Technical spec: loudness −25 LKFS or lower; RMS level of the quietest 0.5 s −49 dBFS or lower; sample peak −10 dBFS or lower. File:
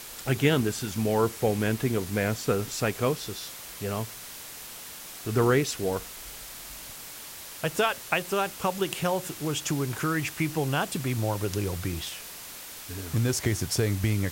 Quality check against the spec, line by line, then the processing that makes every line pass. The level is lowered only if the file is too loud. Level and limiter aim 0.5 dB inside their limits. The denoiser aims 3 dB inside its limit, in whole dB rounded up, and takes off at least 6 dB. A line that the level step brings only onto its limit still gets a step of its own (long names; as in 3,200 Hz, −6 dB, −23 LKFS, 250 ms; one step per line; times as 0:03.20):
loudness −28.0 LKFS: in spec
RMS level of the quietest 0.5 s −42 dBFS: out of spec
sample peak −8.5 dBFS: out of spec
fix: broadband denoise 10 dB, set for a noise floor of −42 dBFS
brickwall limiter −10.5 dBFS